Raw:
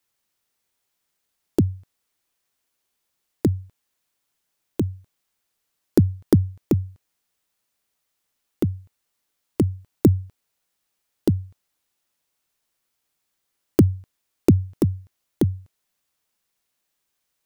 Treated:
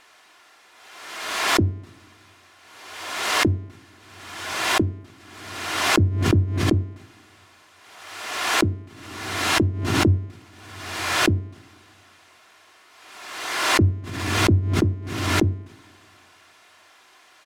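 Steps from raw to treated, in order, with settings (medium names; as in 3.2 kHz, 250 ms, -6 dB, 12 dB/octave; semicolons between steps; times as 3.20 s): zero-crossing glitches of -20 dBFS; low-pass 1.2 kHz 12 dB/octave; comb 2.9 ms, depth 41%; peak limiter -10.5 dBFS, peak gain reduction 8 dB; reverberation, pre-delay 3 ms, DRR 10 dB; swell ahead of each attack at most 42 dB/s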